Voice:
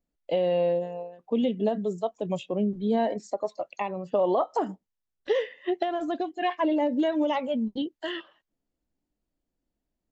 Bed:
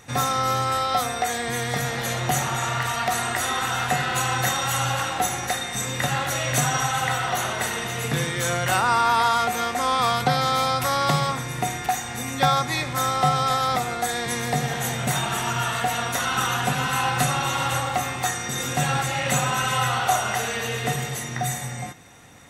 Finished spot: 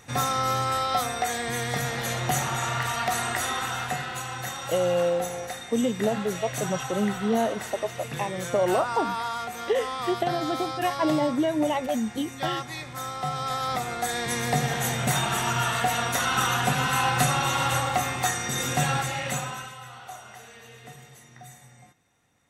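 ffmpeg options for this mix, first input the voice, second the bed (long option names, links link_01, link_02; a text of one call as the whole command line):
ffmpeg -i stem1.wav -i stem2.wav -filter_complex "[0:a]adelay=4400,volume=0.5dB[link_01];[1:a]volume=7.5dB,afade=type=out:start_time=3.35:duration=0.89:silence=0.398107,afade=type=in:start_time=13.22:duration=1.3:silence=0.316228,afade=type=out:start_time=18.73:duration=1.02:silence=0.105925[link_02];[link_01][link_02]amix=inputs=2:normalize=0" out.wav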